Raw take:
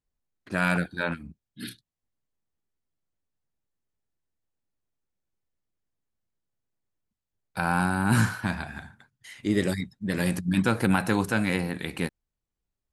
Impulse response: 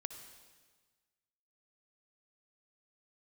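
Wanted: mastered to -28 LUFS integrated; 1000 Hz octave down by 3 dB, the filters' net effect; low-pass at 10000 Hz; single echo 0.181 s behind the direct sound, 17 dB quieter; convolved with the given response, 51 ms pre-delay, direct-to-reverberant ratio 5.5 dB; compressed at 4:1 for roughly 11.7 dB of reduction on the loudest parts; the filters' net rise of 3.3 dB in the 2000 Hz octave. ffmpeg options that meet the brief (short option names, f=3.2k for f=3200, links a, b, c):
-filter_complex "[0:a]lowpass=10k,equalizer=f=1k:t=o:g=-7.5,equalizer=f=2k:t=o:g=8,acompressor=threshold=-32dB:ratio=4,aecho=1:1:181:0.141,asplit=2[a][b];[1:a]atrim=start_sample=2205,adelay=51[c];[b][c]afir=irnorm=-1:irlink=0,volume=-3dB[d];[a][d]amix=inputs=2:normalize=0,volume=7dB"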